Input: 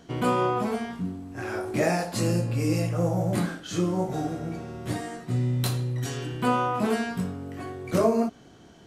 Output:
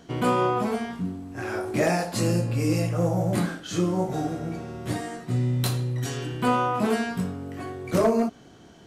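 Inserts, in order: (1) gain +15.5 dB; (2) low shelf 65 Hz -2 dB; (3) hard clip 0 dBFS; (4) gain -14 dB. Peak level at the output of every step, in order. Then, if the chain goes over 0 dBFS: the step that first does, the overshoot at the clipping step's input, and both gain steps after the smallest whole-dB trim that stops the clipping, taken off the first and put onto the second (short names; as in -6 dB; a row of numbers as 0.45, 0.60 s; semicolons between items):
+5.0, +5.0, 0.0, -14.0 dBFS; step 1, 5.0 dB; step 1 +10.5 dB, step 4 -9 dB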